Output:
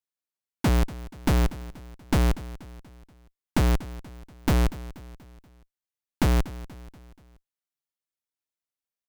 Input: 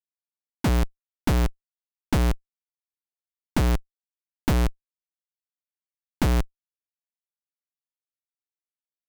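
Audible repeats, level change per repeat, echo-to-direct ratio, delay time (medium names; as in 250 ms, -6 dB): 3, -6.0 dB, -16.0 dB, 240 ms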